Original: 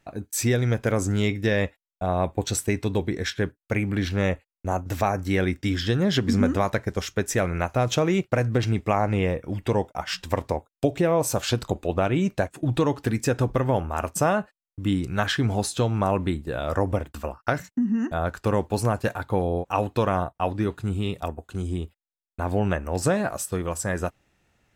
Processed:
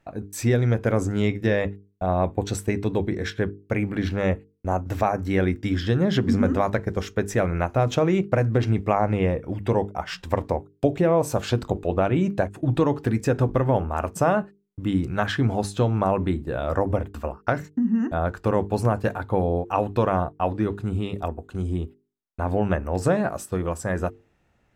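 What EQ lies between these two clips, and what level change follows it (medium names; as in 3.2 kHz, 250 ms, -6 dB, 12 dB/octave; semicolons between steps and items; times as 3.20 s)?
treble shelf 2.4 kHz -10.5 dB; hum notches 50/100/150/200/250/300/350/400/450 Hz; +2.5 dB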